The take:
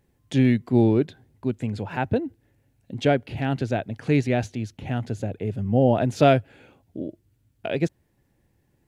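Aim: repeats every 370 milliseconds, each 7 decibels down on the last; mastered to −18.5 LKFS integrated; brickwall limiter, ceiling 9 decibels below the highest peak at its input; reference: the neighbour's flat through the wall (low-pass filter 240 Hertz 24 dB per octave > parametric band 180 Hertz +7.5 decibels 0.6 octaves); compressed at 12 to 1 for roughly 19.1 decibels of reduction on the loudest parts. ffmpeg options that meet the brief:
ffmpeg -i in.wav -af "acompressor=threshold=-32dB:ratio=12,alimiter=level_in=3dB:limit=-24dB:level=0:latency=1,volume=-3dB,lowpass=frequency=240:width=0.5412,lowpass=frequency=240:width=1.3066,equalizer=frequency=180:width_type=o:width=0.6:gain=7.5,aecho=1:1:370|740|1110|1480|1850:0.447|0.201|0.0905|0.0407|0.0183,volume=21.5dB" out.wav

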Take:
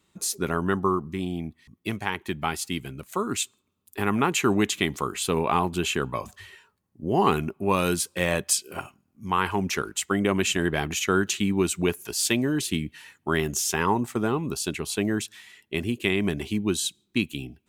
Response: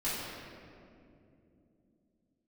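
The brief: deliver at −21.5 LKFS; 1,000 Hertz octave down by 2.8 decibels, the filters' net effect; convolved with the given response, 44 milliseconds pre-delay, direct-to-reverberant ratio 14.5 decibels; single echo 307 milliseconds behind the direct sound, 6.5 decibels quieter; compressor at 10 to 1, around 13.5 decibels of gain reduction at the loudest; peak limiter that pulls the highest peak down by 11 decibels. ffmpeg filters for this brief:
-filter_complex "[0:a]equalizer=frequency=1000:width_type=o:gain=-3.5,acompressor=threshold=-32dB:ratio=10,alimiter=level_in=3.5dB:limit=-24dB:level=0:latency=1,volume=-3.5dB,aecho=1:1:307:0.473,asplit=2[link_01][link_02];[1:a]atrim=start_sample=2205,adelay=44[link_03];[link_02][link_03]afir=irnorm=-1:irlink=0,volume=-21.5dB[link_04];[link_01][link_04]amix=inputs=2:normalize=0,volume=17dB"

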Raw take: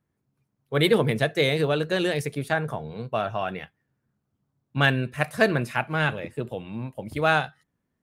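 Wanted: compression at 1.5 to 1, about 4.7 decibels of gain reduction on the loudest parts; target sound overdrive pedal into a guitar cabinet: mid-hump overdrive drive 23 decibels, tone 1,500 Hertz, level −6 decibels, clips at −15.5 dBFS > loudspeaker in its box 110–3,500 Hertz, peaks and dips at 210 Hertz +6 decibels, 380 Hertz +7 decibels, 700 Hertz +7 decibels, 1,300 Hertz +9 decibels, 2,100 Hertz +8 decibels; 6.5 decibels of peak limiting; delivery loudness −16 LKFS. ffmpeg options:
ffmpeg -i in.wav -filter_complex "[0:a]acompressor=threshold=-27dB:ratio=1.5,alimiter=limit=-15.5dB:level=0:latency=1,asplit=2[link_01][link_02];[link_02]highpass=frequency=720:poles=1,volume=23dB,asoftclip=type=tanh:threshold=-15.5dB[link_03];[link_01][link_03]amix=inputs=2:normalize=0,lowpass=frequency=1500:poles=1,volume=-6dB,highpass=110,equalizer=frequency=210:width_type=q:width=4:gain=6,equalizer=frequency=380:width_type=q:width=4:gain=7,equalizer=frequency=700:width_type=q:width=4:gain=7,equalizer=frequency=1300:width_type=q:width=4:gain=9,equalizer=frequency=2100:width_type=q:width=4:gain=8,lowpass=frequency=3500:width=0.5412,lowpass=frequency=3500:width=1.3066,volume=5.5dB" out.wav

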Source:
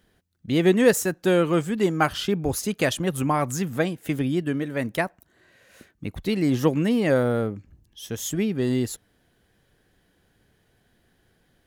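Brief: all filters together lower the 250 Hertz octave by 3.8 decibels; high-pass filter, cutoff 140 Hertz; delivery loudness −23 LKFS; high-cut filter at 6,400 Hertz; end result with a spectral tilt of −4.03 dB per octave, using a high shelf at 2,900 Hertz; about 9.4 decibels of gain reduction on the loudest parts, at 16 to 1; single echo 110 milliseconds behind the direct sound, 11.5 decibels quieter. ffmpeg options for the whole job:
ffmpeg -i in.wav -af "highpass=140,lowpass=6400,equalizer=frequency=250:width_type=o:gain=-4.5,highshelf=frequency=2900:gain=8,acompressor=threshold=-21dB:ratio=16,aecho=1:1:110:0.266,volume=5dB" out.wav

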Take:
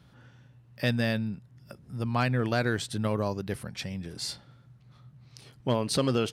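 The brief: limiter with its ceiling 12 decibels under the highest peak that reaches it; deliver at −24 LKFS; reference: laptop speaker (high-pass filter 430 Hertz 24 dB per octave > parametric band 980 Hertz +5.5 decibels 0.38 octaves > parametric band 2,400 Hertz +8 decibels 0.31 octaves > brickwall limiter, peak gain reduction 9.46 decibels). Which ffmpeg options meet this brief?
ffmpeg -i in.wav -af "alimiter=level_in=2dB:limit=-24dB:level=0:latency=1,volume=-2dB,highpass=frequency=430:width=0.5412,highpass=frequency=430:width=1.3066,equalizer=frequency=980:width_type=o:width=0.38:gain=5.5,equalizer=frequency=2400:width_type=o:width=0.31:gain=8,volume=20dB,alimiter=limit=-12.5dB:level=0:latency=1" out.wav

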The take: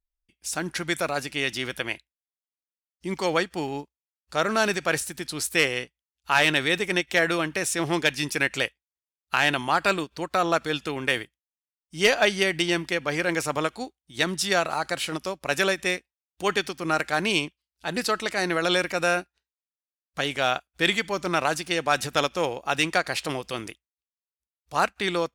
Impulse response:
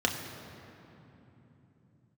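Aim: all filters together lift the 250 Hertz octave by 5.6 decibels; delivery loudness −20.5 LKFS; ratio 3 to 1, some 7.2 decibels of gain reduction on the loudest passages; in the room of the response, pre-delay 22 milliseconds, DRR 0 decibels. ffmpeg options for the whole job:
-filter_complex "[0:a]equalizer=frequency=250:width_type=o:gain=8.5,acompressor=threshold=-24dB:ratio=3,asplit=2[link_01][link_02];[1:a]atrim=start_sample=2205,adelay=22[link_03];[link_02][link_03]afir=irnorm=-1:irlink=0,volume=-10dB[link_04];[link_01][link_04]amix=inputs=2:normalize=0,volume=4.5dB"

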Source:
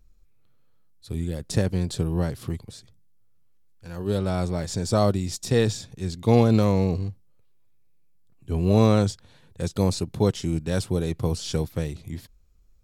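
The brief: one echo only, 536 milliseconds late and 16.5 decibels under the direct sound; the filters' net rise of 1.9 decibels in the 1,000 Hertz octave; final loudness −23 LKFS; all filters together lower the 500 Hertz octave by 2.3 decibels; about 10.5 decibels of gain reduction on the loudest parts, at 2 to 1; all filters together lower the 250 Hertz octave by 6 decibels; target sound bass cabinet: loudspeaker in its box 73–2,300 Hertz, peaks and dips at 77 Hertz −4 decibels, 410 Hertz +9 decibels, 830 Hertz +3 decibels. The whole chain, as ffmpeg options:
ffmpeg -i in.wav -af "equalizer=frequency=250:width_type=o:gain=-8,equalizer=frequency=500:width_type=o:gain=-7,equalizer=frequency=1000:width_type=o:gain=3.5,acompressor=threshold=-38dB:ratio=2,highpass=frequency=73:width=0.5412,highpass=frequency=73:width=1.3066,equalizer=frequency=77:width_type=q:width=4:gain=-4,equalizer=frequency=410:width_type=q:width=4:gain=9,equalizer=frequency=830:width_type=q:width=4:gain=3,lowpass=frequency=2300:width=0.5412,lowpass=frequency=2300:width=1.3066,aecho=1:1:536:0.15,volume=14dB" out.wav

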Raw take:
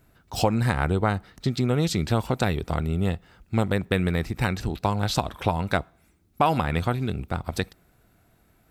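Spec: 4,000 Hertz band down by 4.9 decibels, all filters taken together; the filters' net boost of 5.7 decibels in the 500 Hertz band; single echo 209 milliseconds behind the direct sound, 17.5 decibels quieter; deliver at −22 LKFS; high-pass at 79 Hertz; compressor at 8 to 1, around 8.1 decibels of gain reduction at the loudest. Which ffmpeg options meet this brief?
ffmpeg -i in.wav -af "highpass=79,equalizer=frequency=500:width_type=o:gain=7,equalizer=frequency=4000:width_type=o:gain=-6,acompressor=threshold=-21dB:ratio=8,aecho=1:1:209:0.133,volume=7dB" out.wav

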